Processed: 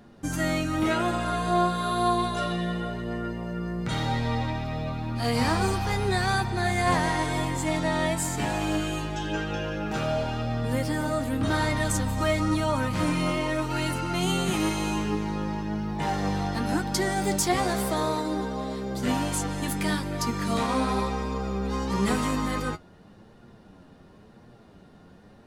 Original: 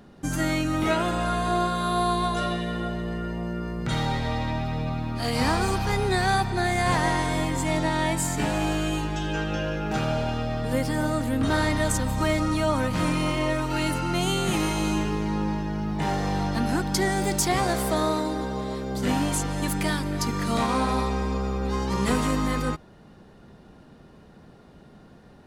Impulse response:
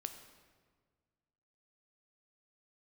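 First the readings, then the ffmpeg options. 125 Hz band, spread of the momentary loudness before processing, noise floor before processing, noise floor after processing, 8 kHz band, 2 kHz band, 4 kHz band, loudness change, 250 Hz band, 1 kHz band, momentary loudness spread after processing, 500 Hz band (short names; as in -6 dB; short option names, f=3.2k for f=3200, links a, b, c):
-1.5 dB, 5 LU, -51 dBFS, -52 dBFS, -1.5 dB, -1.5 dB, -1.5 dB, -1.5 dB, -1.5 dB, -1.0 dB, 6 LU, -1.5 dB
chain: -af "flanger=delay=8.4:depth=2.9:regen=44:speed=0.94:shape=sinusoidal,volume=2.5dB"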